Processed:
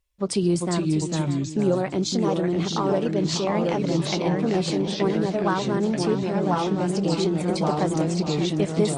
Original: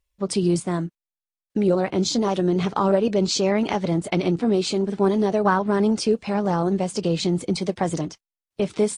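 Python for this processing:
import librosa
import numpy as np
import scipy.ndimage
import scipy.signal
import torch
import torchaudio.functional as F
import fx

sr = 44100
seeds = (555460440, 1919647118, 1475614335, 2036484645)

y = fx.echo_pitch(x, sr, ms=369, semitones=-2, count=2, db_per_echo=-3.0)
y = fx.echo_feedback(y, sr, ms=594, feedback_pct=49, wet_db=-13.0)
y = fx.rider(y, sr, range_db=4, speed_s=0.5)
y = y * librosa.db_to_amplitude(-3.5)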